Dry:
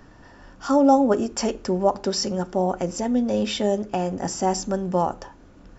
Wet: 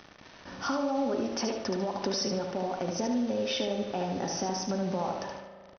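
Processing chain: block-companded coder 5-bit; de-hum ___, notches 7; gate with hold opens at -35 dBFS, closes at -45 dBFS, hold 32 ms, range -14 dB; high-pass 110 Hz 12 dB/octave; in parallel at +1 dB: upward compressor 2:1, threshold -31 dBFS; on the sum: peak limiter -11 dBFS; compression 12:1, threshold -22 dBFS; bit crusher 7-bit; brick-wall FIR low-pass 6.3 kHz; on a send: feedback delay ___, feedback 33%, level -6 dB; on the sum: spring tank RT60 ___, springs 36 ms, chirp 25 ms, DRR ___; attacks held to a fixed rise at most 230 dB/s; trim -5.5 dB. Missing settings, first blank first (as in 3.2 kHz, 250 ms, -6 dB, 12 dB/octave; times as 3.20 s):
328.9 Hz, 74 ms, 2.1 s, 9 dB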